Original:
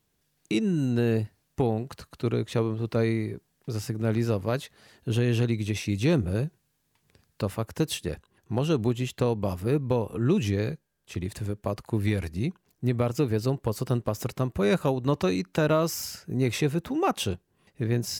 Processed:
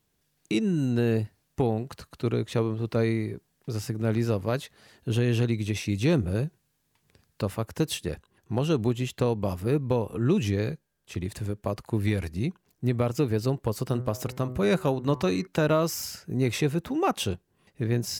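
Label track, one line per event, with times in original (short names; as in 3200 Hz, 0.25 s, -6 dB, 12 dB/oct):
13.850000	15.470000	de-hum 125.9 Hz, notches 17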